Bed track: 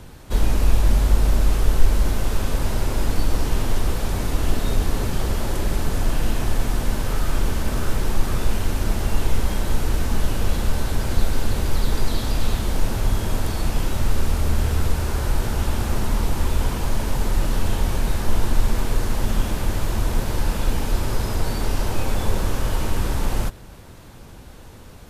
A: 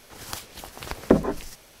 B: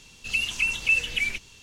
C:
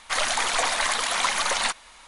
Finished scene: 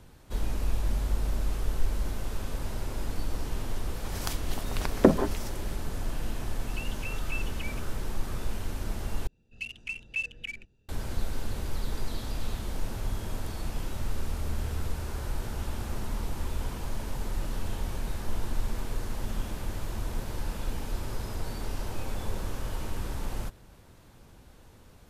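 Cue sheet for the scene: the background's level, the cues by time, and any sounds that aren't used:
bed track -11.5 dB
3.94 add A -1 dB
6.43 add B -16.5 dB
9.27 replace with B -9.5 dB + Wiener smoothing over 41 samples
not used: C

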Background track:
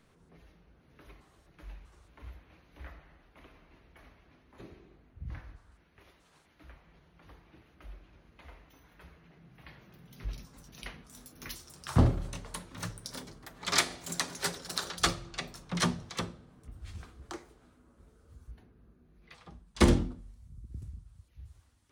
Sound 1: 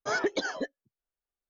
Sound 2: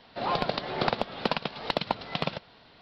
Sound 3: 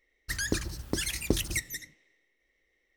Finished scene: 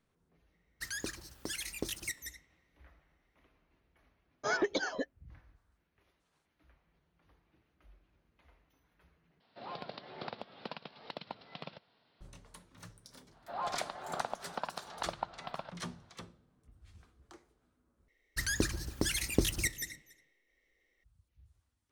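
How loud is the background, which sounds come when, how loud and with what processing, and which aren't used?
background track -13.5 dB
0.52 add 3 -7 dB + low shelf 220 Hz -12 dB
4.38 add 1 -3 dB
9.4 replace with 2 -16 dB + HPF 98 Hz
13.32 add 2 -18 dB + band shelf 1000 Hz +10.5 dB
18.08 replace with 3 -1.5 dB + echo 0.281 s -22 dB

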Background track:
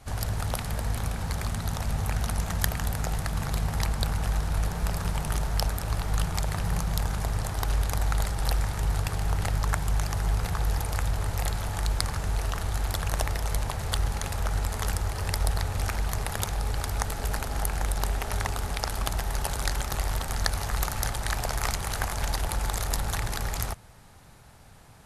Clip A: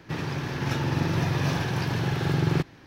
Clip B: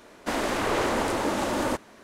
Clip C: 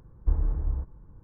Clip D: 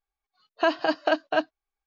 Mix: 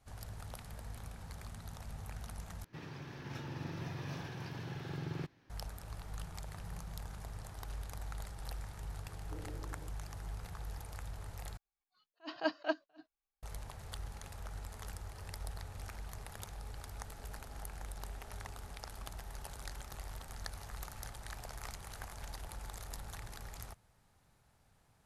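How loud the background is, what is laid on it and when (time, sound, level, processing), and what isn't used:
background track -17.5 dB
2.64 replace with A -17 dB
9.04 add C -3.5 dB + elliptic band-pass 290–620 Hz
11.57 replace with D -8.5 dB + attack slew limiter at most 370 dB/s
not used: B

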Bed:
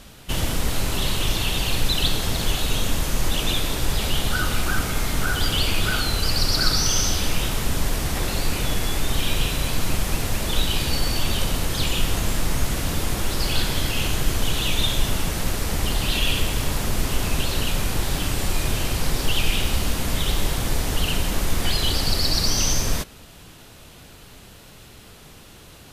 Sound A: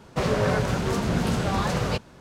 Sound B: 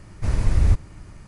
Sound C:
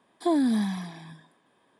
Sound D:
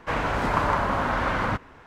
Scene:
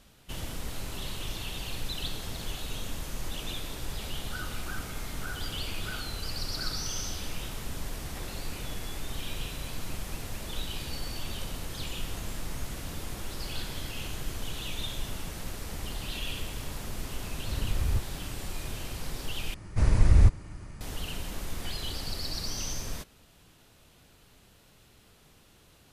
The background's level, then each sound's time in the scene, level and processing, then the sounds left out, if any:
bed -13.5 dB
17.24 add B -11 dB + short-mantissa float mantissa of 6-bit
19.54 replace with B -1 dB
not used: A, C, D

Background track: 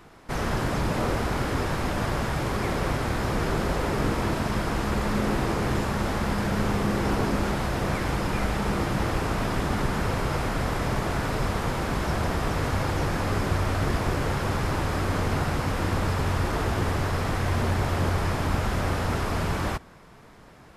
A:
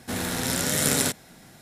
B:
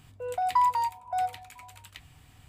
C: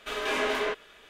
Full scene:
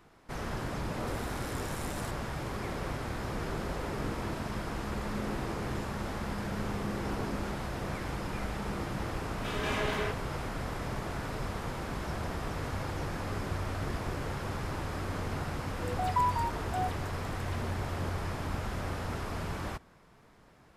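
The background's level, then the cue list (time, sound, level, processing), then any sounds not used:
background track -9.5 dB
0.99 add A -10 dB + compressor 5:1, threshold -33 dBFS
9.38 add C -5.5 dB
15.55 add B -5.5 dB + dispersion lows, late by 67 ms, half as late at 2400 Hz

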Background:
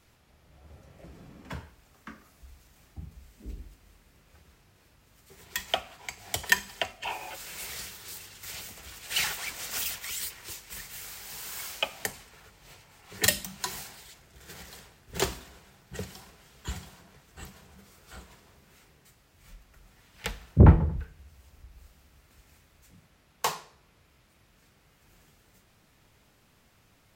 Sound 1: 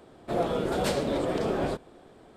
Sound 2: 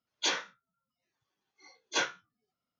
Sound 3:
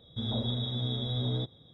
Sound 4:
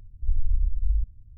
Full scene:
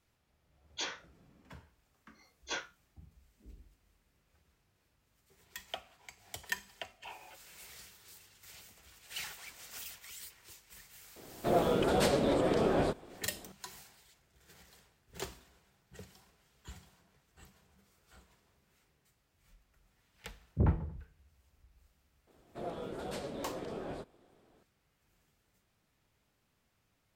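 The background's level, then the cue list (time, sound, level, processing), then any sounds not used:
background -13.5 dB
0.55 add 2 -8.5 dB
11.16 add 1 -1 dB
22.27 add 1 -13.5 dB
not used: 3, 4

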